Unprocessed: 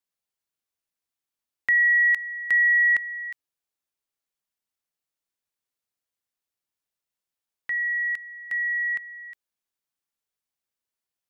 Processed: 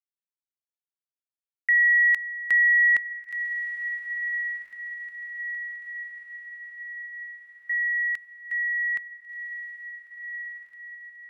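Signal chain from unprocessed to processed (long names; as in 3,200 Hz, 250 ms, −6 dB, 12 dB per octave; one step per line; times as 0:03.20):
downward expander −33 dBFS
feedback delay with all-pass diffusion 1,485 ms, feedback 57%, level −10 dB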